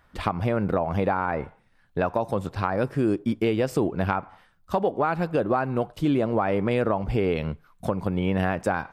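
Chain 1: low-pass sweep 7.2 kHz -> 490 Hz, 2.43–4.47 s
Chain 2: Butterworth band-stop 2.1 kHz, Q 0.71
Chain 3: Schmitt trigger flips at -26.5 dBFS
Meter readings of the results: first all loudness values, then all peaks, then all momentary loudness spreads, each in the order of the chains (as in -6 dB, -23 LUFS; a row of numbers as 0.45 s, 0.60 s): -23.5 LUFS, -26.5 LUFS, -28.5 LUFS; -7.0 dBFS, -11.0 dBFS, -19.5 dBFS; 8 LU, 7 LU, 6 LU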